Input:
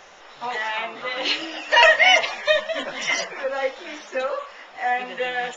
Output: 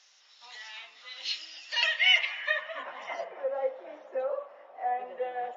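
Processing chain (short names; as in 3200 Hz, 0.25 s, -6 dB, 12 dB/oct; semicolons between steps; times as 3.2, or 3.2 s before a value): band-pass sweep 5000 Hz -> 610 Hz, 1.64–3.3; spring tank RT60 2.3 s, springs 38/53 ms, chirp 45 ms, DRR 15.5 dB; gain -3 dB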